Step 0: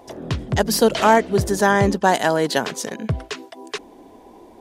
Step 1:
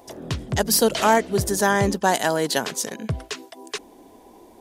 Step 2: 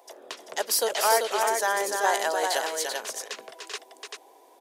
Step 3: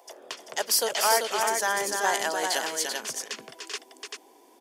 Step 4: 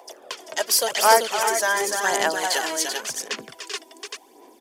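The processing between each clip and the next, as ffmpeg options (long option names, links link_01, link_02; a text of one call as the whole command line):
ffmpeg -i in.wav -af "highshelf=frequency=5600:gain=10.5,volume=-3.5dB" out.wav
ffmpeg -i in.wav -filter_complex "[0:a]highpass=frequency=450:width=0.5412,highpass=frequency=450:width=1.3066,asplit=2[link_01][link_02];[link_02]aecho=0:1:295|388:0.531|0.596[link_03];[link_01][link_03]amix=inputs=2:normalize=0,volume=-5dB" out.wav
ffmpeg -i in.wav -filter_complex "[0:a]bandreject=frequency=3900:width=10,asubboost=boost=11.5:cutoff=180,acrossover=split=5800[link_01][link_02];[link_01]crystalizer=i=1.5:c=0[link_03];[link_03][link_02]amix=inputs=2:normalize=0" out.wav
ffmpeg -i in.wav -af "aphaser=in_gain=1:out_gain=1:delay=3.2:decay=0.52:speed=0.9:type=sinusoidal,volume=2.5dB" out.wav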